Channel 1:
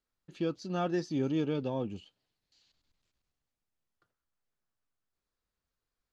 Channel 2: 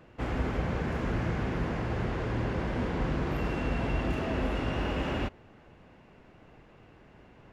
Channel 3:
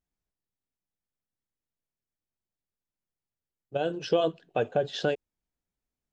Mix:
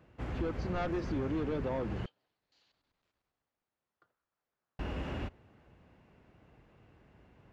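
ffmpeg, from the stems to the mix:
ffmpeg -i stem1.wav -i stem2.wav -filter_complex "[0:a]bandpass=frequency=830:width_type=q:width=0.59:csg=0,aeval=exprs='0.0841*(cos(1*acos(clip(val(0)/0.0841,-1,1)))-cos(1*PI/2))+0.0266*(cos(5*acos(clip(val(0)/0.0841,-1,1)))-cos(5*PI/2))':channel_layout=same,volume=-2dB[link_01];[1:a]highpass=58,volume=-8.5dB,asplit=3[link_02][link_03][link_04];[link_02]atrim=end=2.06,asetpts=PTS-STARTPTS,afade=type=out:start_time=2.056:duration=0.004:curve=hsin[link_05];[link_03]atrim=start=2.06:end=4.79,asetpts=PTS-STARTPTS,volume=0[link_06];[link_04]atrim=start=4.79,asetpts=PTS-STARTPTS,afade=type=in:duration=0.004:curve=hsin[link_07];[link_05][link_06][link_07]concat=n=3:v=0:a=1[link_08];[link_01][link_08]amix=inputs=2:normalize=0,lowshelf=frequency=98:gain=10.5,acompressor=threshold=-32dB:ratio=2.5" out.wav

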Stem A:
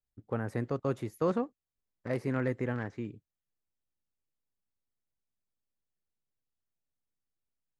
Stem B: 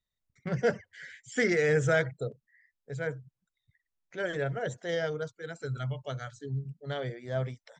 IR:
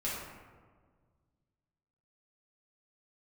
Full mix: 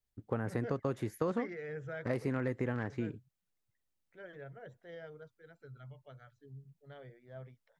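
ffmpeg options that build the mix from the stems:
-filter_complex "[0:a]acompressor=threshold=-32dB:ratio=6,volume=2.5dB[link_01];[1:a]lowpass=2700,volume=-17dB[link_02];[link_01][link_02]amix=inputs=2:normalize=0"

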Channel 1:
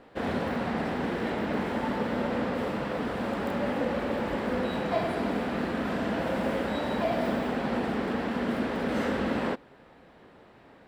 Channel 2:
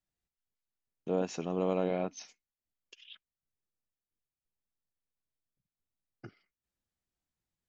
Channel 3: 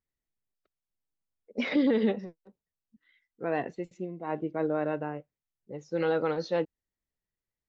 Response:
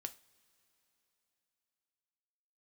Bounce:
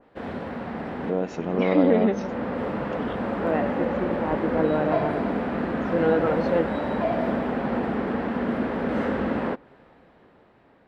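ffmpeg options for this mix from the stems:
-filter_complex "[0:a]volume=-3dB[link_01];[1:a]volume=2.5dB,asplit=2[link_02][link_03];[2:a]volume=-1.5dB[link_04];[link_03]apad=whole_len=479763[link_05];[link_01][link_05]sidechaincompress=threshold=-31dB:ratio=8:attack=34:release=1040[link_06];[link_06][link_02][link_04]amix=inputs=3:normalize=0,highshelf=frequency=4700:gain=-11.5,dynaudnorm=framelen=390:gausssize=7:maxgain=6.5dB,adynamicequalizer=threshold=0.00708:dfrequency=2600:dqfactor=0.7:tfrequency=2600:tqfactor=0.7:attack=5:release=100:ratio=0.375:range=3:mode=cutabove:tftype=highshelf"

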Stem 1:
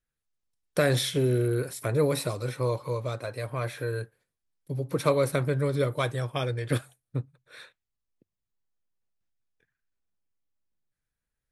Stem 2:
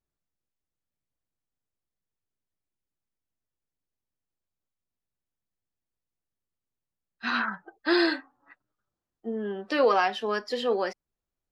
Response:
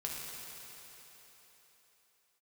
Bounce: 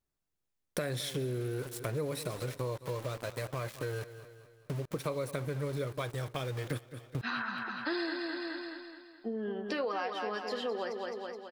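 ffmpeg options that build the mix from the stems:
-filter_complex "[0:a]aeval=exprs='val(0)*gte(abs(val(0)),0.0168)':channel_layout=same,volume=1.5dB,asplit=2[link_01][link_02];[link_02]volume=-18.5dB[link_03];[1:a]volume=1dB,asplit=2[link_04][link_05];[link_05]volume=-7.5dB[link_06];[link_03][link_06]amix=inputs=2:normalize=0,aecho=0:1:212|424|636|848|1060|1272|1484:1|0.47|0.221|0.104|0.0488|0.0229|0.0108[link_07];[link_01][link_04][link_07]amix=inputs=3:normalize=0,acompressor=threshold=-34dB:ratio=4"

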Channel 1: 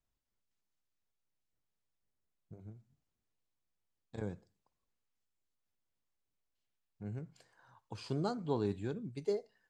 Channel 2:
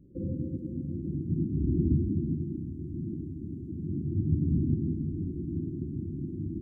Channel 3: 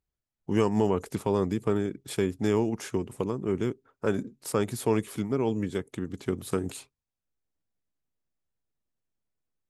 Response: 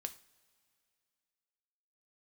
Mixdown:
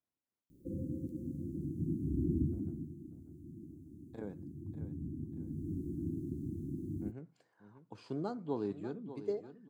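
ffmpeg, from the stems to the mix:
-filter_complex "[0:a]highpass=160,highshelf=frequency=2400:gain=-10.5,volume=-2.5dB,asplit=2[link_01][link_02];[link_02]volume=-12dB[link_03];[1:a]crystalizer=i=9:c=0,adelay=500,volume=1.5dB,afade=type=out:start_time=2.33:duration=0.6:silence=0.375837,afade=type=in:start_time=5.33:duration=0.41:silence=0.334965[link_04];[link_03]aecho=0:1:593|1186|1779|2372|2965:1|0.32|0.102|0.0328|0.0105[link_05];[link_01][link_04][link_05]amix=inputs=3:normalize=0,equalizer=frequency=290:width_type=o:width=0.46:gain=4"

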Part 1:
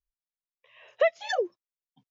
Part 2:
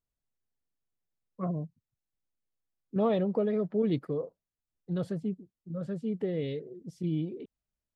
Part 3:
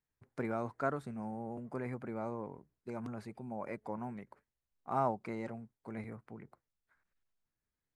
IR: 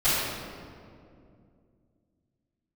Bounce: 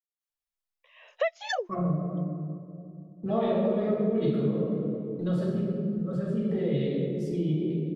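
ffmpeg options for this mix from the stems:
-filter_complex "[0:a]highpass=frequency=520:width=0.5412,highpass=frequency=520:width=1.3066,adelay=200,volume=0dB[link_01];[1:a]agate=range=-25dB:threshold=-51dB:ratio=16:detection=peak,adelay=300,volume=1dB,asplit=2[link_02][link_03];[link_03]volume=-11dB[link_04];[link_02]aphaser=in_gain=1:out_gain=1:delay=3:decay=0.5:speed=0.32:type=triangular,acompressor=threshold=-33dB:ratio=6,volume=0dB[link_05];[3:a]atrim=start_sample=2205[link_06];[link_04][link_06]afir=irnorm=-1:irlink=0[link_07];[link_01][link_05][link_07]amix=inputs=3:normalize=0,acompressor=threshold=-24dB:ratio=2.5"

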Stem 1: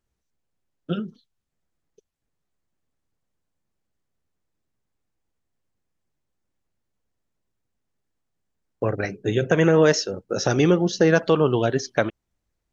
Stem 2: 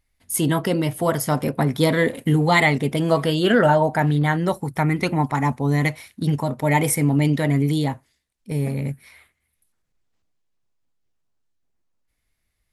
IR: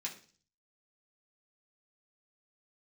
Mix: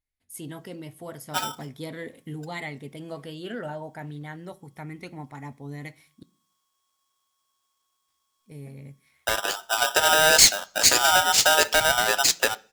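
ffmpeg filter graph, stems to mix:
-filter_complex "[0:a]highshelf=frequency=3700:width_type=q:width=1.5:gain=12.5,asoftclip=type=tanh:threshold=-7dB,aeval=exprs='val(0)*sgn(sin(2*PI*1100*n/s))':channel_layout=same,adelay=450,volume=-1dB,asplit=2[link_01][link_02];[link_02]volume=-11.5dB[link_03];[1:a]volume=-18dB,asplit=3[link_04][link_05][link_06];[link_04]atrim=end=6.23,asetpts=PTS-STARTPTS,afade=type=out:start_time=6.226:duration=0.004:curve=hsin[link_07];[link_05]atrim=start=6.23:end=8.08,asetpts=PTS-STARTPTS,volume=0[link_08];[link_06]atrim=start=8.08,asetpts=PTS-STARTPTS,afade=type=in:duration=0.004:curve=hsin[link_09];[link_07][link_08][link_09]concat=n=3:v=0:a=1,asplit=2[link_10][link_11];[link_11]volume=-11.5dB[link_12];[2:a]atrim=start_sample=2205[link_13];[link_03][link_12]amix=inputs=2:normalize=0[link_14];[link_14][link_13]afir=irnorm=-1:irlink=0[link_15];[link_01][link_10][link_15]amix=inputs=3:normalize=0,equalizer=frequency=1100:width=2.5:gain=-4"

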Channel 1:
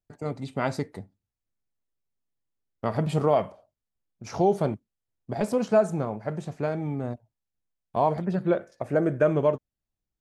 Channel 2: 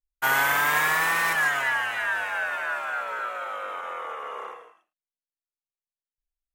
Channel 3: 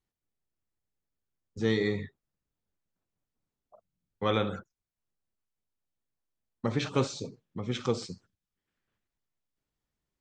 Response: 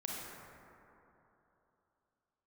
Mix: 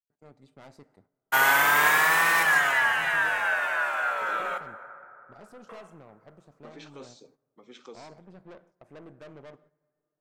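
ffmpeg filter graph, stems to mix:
-filter_complex "[0:a]aeval=exprs='(tanh(22.4*val(0)+0.8)-tanh(0.8))/22.4':channel_layout=same,volume=-16.5dB,asplit=2[link_01][link_02];[link_02]volume=-16.5dB[link_03];[1:a]adelay=1100,volume=0dB,asplit=3[link_04][link_05][link_06];[link_04]atrim=end=4.58,asetpts=PTS-STARTPTS,afade=type=out:start_time=4.576:duration=0.004:curve=hsin[link_07];[link_05]atrim=start=4.58:end=5.69,asetpts=PTS-STARTPTS,volume=0[link_08];[link_06]atrim=start=5.69,asetpts=PTS-STARTPTS,afade=type=in:duration=0.004:curve=hsin[link_09];[link_07][link_08][link_09]concat=n=3:v=0:a=1,asplit=2[link_10][link_11];[link_11]volume=-9dB[link_12];[2:a]alimiter=limit=-19dB:level=0:latency=1:release=17,highpass=frequency=250:width=0.5412,highpass=frequency=250:width=1.3066,volume=-13.5dB,asplit=2[link_13][link_14];[link_14]volume=-23dB[link_15];[3:a]atrim=start_sample=2205[link_16];[link_03][link_12][link_15]amix=inputs=3:normalize=0[link_17];[link_17][link_16]afir=irnorm=-1:irlink=0[link_18];[link_01][link_10][link_13][link_18]amix=inputs=4:normalize=0,agate=range=-11dB:threshold=-59dB:ratio=16:detection=peak,lowshelf=frequency=110:gain=-9.5"

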